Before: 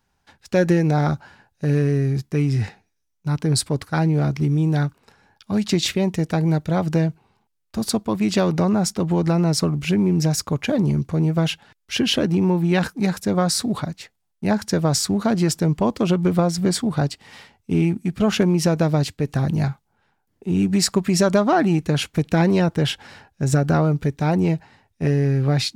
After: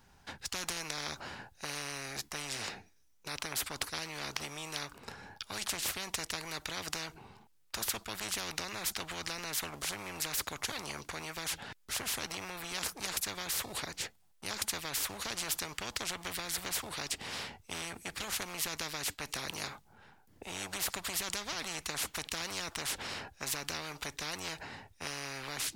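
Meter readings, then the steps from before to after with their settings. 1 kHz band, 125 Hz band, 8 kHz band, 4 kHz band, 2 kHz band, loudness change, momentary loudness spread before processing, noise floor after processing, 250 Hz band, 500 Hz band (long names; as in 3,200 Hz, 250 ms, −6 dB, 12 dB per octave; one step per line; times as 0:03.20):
−14.5 dB, −31.0 dB, −6.5 dB, −8.0 dB, −7.5 dB, −16.5 dB, 8 LU, −65 dBFS, −29.5 dB, −23.0 dB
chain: every bin compressed towards the loudest bin 10 to 1
level −6 dB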